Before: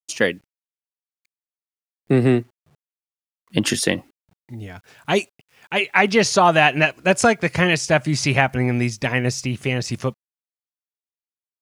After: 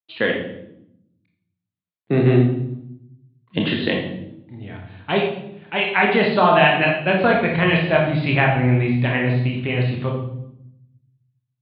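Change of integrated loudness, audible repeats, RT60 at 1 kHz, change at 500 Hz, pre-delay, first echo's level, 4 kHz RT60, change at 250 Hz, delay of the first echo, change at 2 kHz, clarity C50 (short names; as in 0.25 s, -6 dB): +0.5 dB, none, 0.70 s, +1.0 dB, 25 ms, none, 0.65 s, +1.5 dB, none, 0.0 dB, 4.5 dB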